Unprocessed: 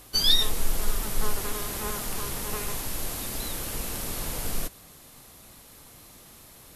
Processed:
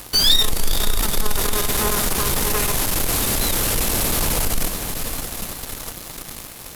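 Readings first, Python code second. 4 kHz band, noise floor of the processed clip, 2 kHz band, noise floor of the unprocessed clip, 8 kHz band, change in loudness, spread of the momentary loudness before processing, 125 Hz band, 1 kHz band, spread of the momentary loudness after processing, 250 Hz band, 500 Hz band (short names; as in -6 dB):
+7.0 dB, -37 dBFS, +11.5 dB, -51 dBFS, +11.5 dB, +9.0 dB, 25 LU, +10.5 dB, +10.5 dB, 14 LU, +10.5 dB, +10.5 dB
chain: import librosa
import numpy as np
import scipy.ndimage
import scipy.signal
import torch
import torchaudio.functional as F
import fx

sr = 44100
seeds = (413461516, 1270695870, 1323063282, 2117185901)

p1 = fx.echo_diffused(x, sr, ms=502, feedback_pct=55, wet_db=-14.5)
p2 = fx.fuzz(p1, sr, gain_db=44.0, gate_db=-46.0)
p3 = p1 + (p2 * 10.0 ** (-10.0 / 20.0))
y = p3 * 10.0 ** (2.5 / 20.0)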